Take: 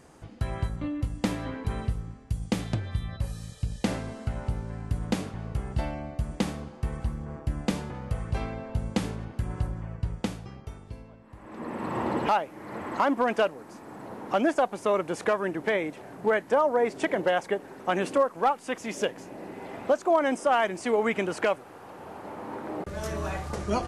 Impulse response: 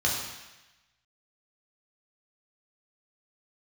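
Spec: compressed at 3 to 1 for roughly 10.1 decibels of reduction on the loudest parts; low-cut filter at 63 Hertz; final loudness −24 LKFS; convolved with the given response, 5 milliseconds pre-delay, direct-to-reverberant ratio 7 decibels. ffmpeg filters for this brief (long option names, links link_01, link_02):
-filter_complex "[0:a]highpass=63,acompressor=threshold=-33dB:ratio=3,asplit=2[link_01][link_02];[1:a]atrim=start_sample=2205,adelay=5[link_03];[link_02][link_03]afir=irnorm=-1:irlink=0,volume=-18dB[link_04];[link_01][link_04]amix=inputs=2:normalize=0,volume=12dB"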